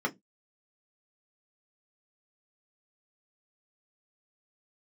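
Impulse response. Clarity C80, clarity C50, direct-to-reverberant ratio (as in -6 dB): 33.5 dB, 26.5 dB, 0.5 dB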